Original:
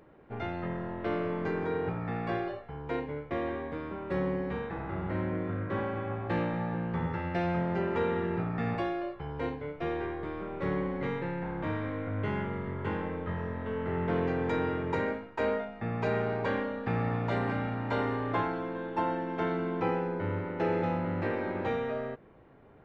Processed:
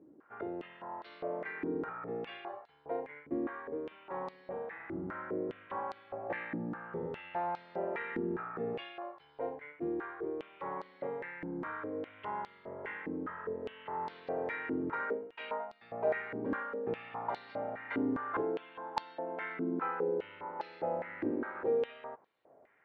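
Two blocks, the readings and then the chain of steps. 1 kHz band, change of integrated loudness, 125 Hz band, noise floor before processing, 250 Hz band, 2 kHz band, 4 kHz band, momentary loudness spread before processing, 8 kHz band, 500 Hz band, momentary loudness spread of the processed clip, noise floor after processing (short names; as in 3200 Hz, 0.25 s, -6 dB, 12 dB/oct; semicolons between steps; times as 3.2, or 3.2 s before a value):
-4.5 dB, -6.0 dB, -17.5 dB, -49 dBFS, -6.5 dB, -4.5 dB, -5.5 dB, 6 LU, n/a, -4.5 dB, 8 LU, -62 dBFS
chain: air absorption 160 m; stepped band-pass 4.9 Hz 290–4300 Hz; gain +6 dB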